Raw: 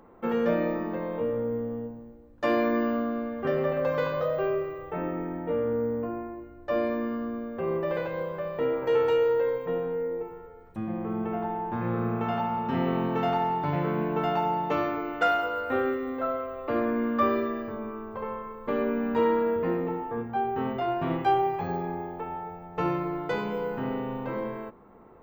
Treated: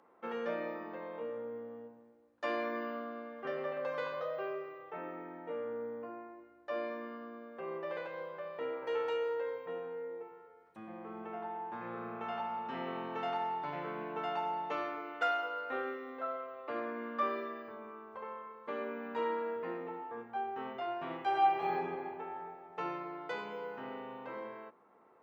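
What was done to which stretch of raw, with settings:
21.25–21.72 s: reverb throw, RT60 2.4 s, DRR -5.5 dB
whole clip: frequency weighting A; trim -8 dB

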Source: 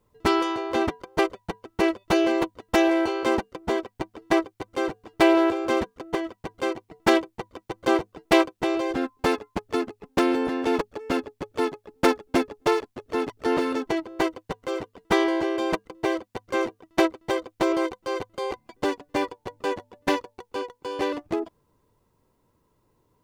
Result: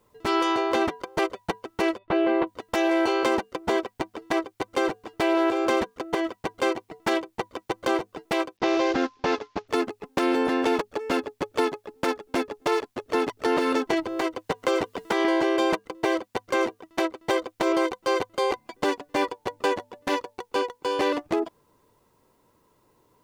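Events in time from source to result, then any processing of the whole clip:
1.98–2.47 s: distance through air 450 m
8.57–9.68 s: CVSD coder 32 kbps
13.93–15.25 s: three bands compressed up and down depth 100%
whole clip: compression, threshold -23 dBFS; peak limiter -18.5 dBFS; bass shelf 190 Hz -10.5 dB; trim +7 dB

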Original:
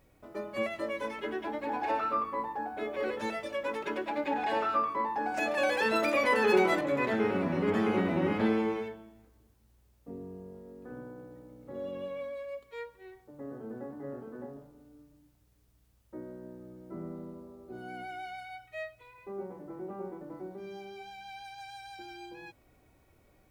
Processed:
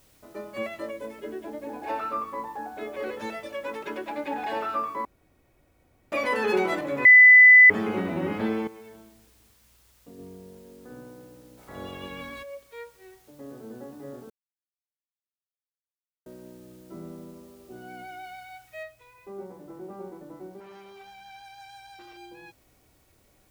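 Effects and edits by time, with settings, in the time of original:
0.91–1.86 s: time-frequency box 720–6700 Hz -8 dB
5.05–6.12 s: room tone
7.05–7.70 s: bleep 2 kHz -8.5 dBFS
8.67–10.19 s: compression 10:1, threshold -42 dBFS
11.57–12.42 s: spectral peaks clipped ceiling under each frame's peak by 25 dB
14.30–16.26 s: mute
18.83 s: noise floor step -62 dB -68 dB
20.60–22.17 s: transformer saturation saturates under 1.1 kHz

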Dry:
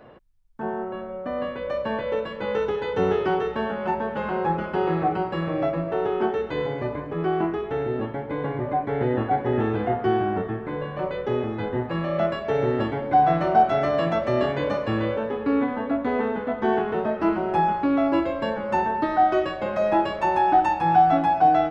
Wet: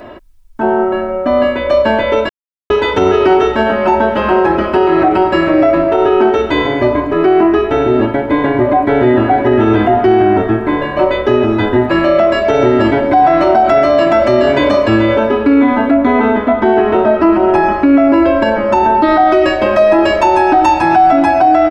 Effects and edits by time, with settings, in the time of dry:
2.29–2.70 s: mute
15.94–19.03 s: treble shelf 4.7 kHz -9 dB
whole clip: treble shelf 4.5 kHz +5 dB; comb 3.1 ms, depth 77%; loudness maximiser +15.5 dB; trim -1 dB

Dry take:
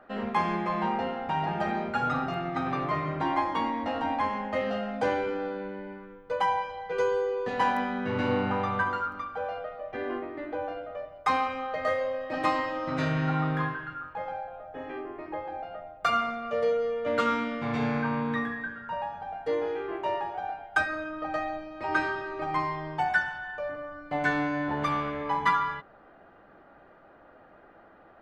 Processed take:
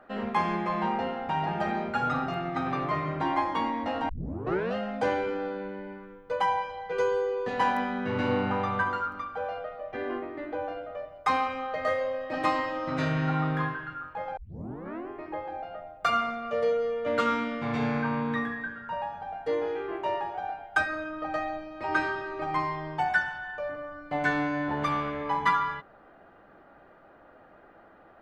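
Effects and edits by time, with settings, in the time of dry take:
4.09 s: tape start 0.66 s
14.37 s: tape start 0.72 s

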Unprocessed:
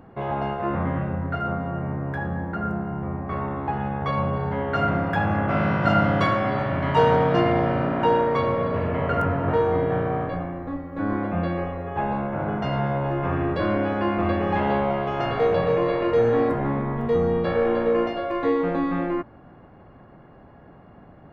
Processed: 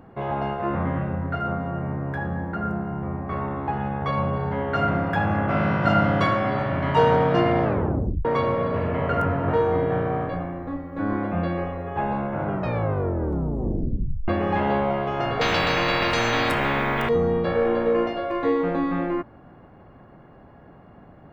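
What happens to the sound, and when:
7.63 s: tape stop 0.62 s
12.44 s: tape stop 1.84 s
15.41–17.09 s: spectrum-flattening compressor 4:1

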